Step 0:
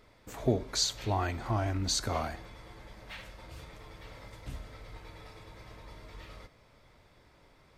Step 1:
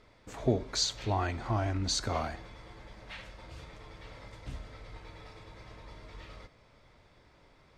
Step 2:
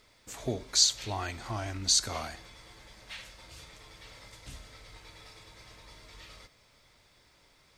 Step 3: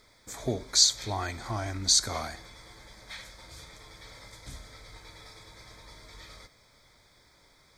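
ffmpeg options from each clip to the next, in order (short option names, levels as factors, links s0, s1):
-af "lowpass=7600"
-af "crystalizer=i=6:c=0,volume=0.501"
-af "asuperstop=centerf=2800:order=4:qfactor=3.7,volume=1.33"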